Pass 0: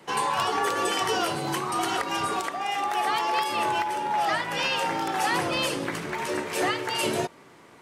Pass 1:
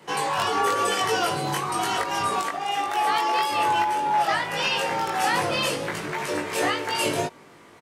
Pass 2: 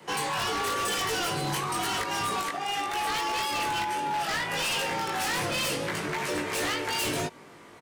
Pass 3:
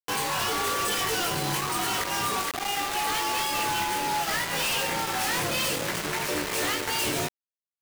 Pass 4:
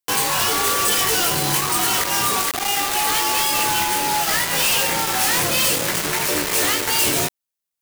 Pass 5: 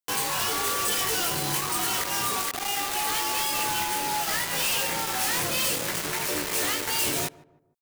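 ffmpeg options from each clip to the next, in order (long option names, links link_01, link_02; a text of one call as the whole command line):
ffmpeg -i in.wav -filter_complex "[0:a]asplit=2[link_01][link_02];[link_02]adelay=20,volume=-2dB[link_03];[link_01][link_03]amix=inputs=2:normalize=0" out.wav
ffmpeg -i in.wav -filter_complex "[0:a]acrossover=split=380|1300|2000[link_01][link_02][link_03][link_04];[link_02]acompressor=threshold=-33dB:ratio=6[link_05];[link_01][link_05][link_03][link_04]amix=inputs=4:normalize=0,aeval=exprs='0.0668*(abs(mod(val(0)/0.0668+3,4)-2)-1)':channel_layout=same" out.wav
ffmpeg -i in.wav -af "acrusher=bits=4:mix=0:aa=0.000001" out.wav
ffmpeg -i in.wav -af "highshelf=frequency=5500:gain=8,volume=5.5dB" out.wav
ffmpeg -i in.wav -filter_complex "[0:a]asplit=2[link_01][link_02];[link_02]adelay=153,lowpass=frequency=950:poles=1,volume=-18.5dB,asplit=2[link_03][link_04];[link_04]adelay=153,lowpass=frequency=950:poles=1,volume=0.42,asplit=2[link_05][link_06];[link_06]adelay=153,lowpass=frequency=950:poles=1,volume=0.42[link_07];[link_01][link_03][link_05][link_07]amix=inputs=4:normalize=0,volume=-7.5dB" out.wav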